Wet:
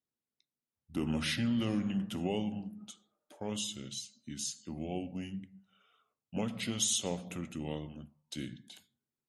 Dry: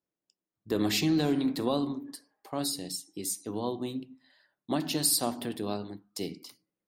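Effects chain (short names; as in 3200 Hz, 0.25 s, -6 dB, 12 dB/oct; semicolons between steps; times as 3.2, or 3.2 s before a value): speed mistake 45 rpm record played at 33 rpm; gain -5.5 dB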